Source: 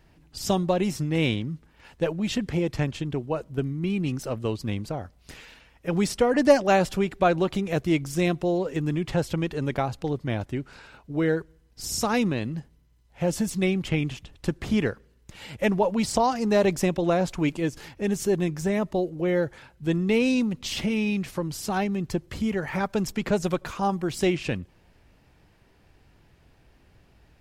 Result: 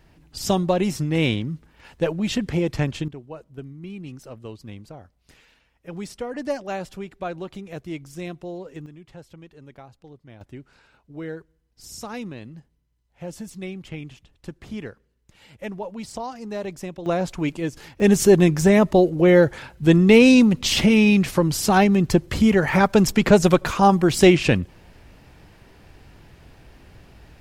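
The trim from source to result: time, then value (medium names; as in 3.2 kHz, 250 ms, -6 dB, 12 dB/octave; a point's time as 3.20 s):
+3 dB
from 3.08 s -9.5 dB
from 8.86 s -18 dB
from 10.41 s -9.5 dB
from 17.06 s 0 dB
from 18.00 s +10 dB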